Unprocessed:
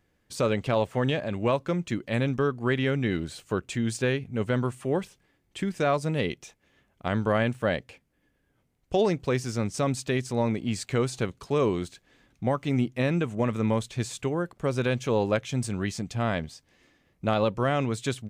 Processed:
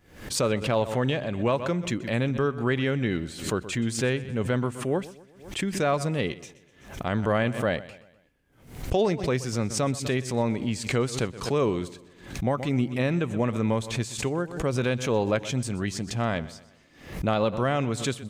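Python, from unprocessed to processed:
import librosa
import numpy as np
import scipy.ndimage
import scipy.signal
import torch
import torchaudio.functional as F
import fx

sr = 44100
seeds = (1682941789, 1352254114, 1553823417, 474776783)

y = fx.echo_feedback(x, sr, ms=125, feedback_pct=45, wet_db=-18)
y = fx.pre_swell(y, sr, db_per_s=100.0)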